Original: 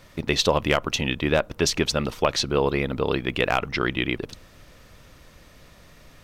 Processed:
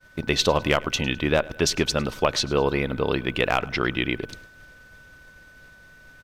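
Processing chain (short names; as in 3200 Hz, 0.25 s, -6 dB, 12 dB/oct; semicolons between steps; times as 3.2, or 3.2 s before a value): whine 1500 Hz -45 dBFS; feedback echo 0.104 s, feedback 44%, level -22 dB; expander -40 dBFS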